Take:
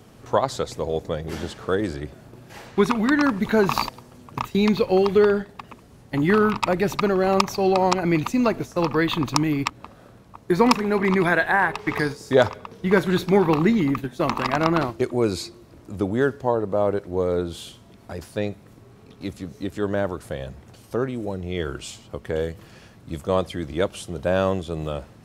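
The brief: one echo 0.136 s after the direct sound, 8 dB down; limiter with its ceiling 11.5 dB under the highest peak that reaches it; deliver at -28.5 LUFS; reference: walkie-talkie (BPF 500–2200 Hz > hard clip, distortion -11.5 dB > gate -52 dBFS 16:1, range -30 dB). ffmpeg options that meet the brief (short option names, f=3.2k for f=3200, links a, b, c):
-af "alimiter=limit=-13dB:level=0:latency=1,highpass=500,lowpass=2.2k,aecho=1:1:136:0.398,asoftclip=type=hard:threshold=-23.5dB,agate=range=-30dB:threshold=-52dB:ratio=16,volume=2.5dB"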